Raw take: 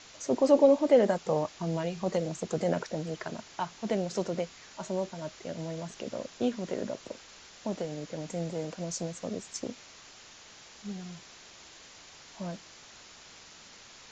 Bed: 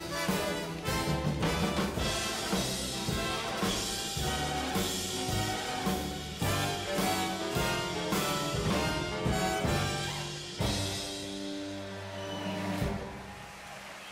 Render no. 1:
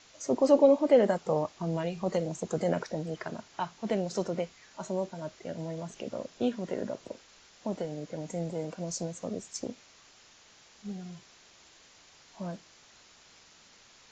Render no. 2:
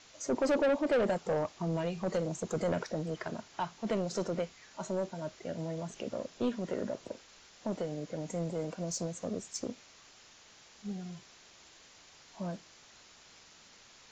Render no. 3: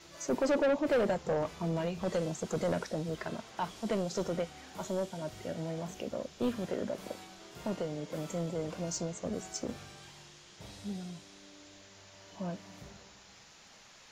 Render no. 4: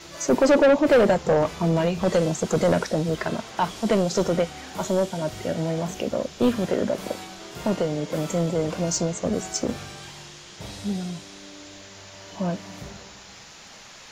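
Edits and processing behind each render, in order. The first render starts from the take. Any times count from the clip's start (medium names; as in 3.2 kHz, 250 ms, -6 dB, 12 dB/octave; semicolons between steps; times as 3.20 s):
noise print and reduce 6 dB
saturation -24 dBFS, distortion -8 dB
add bed -19 dB
trim +11.5 dB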